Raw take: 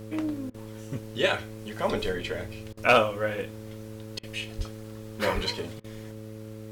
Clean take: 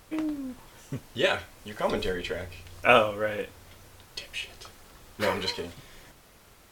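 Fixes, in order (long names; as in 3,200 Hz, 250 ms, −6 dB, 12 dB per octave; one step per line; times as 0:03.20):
clipped peaks rebuilt −9 dBFS
hum removal 108.8 Hz, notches 5
0:04.57–0:04.69: high-pass filter 140 Hz 24 dB per octave
0:05.34–0:05.46: high-pass filter 140 Hz 24 dB per octave
repair the gap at 0:00.50/0:02.73/0:04.19/0:05.80, 41 ms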